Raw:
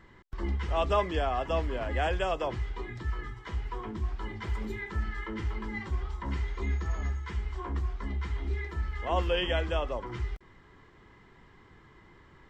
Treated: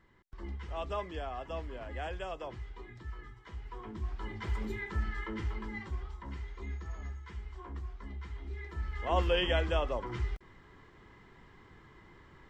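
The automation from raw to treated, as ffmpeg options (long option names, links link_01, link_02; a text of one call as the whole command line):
ffmpeg -i in.wav -af "volume=7.5dB,afade=type=in:start_time=3.59:duration=0.92:silence=0.375837,afade=type=out:start_time=5.21:duration=1.1:silence=0.398107,afade=type=in:start_time=8.53:duration=0.67:silence=0.354813" out.wav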